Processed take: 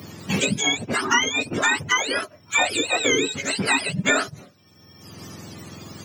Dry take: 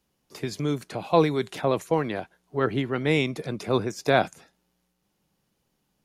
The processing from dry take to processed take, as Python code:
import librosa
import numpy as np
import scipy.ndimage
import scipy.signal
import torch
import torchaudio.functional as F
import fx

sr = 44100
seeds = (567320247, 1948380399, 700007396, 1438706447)

y = fx.octave_mirror(x, sr, pivot_hz=990.0)
y = fx.highpass(y, sr, hz=230.0, slope=6)
y = fx.band_squash(y, sr, depth_pct=100)
y = y * 10.0 ** (7.0 / 20.0)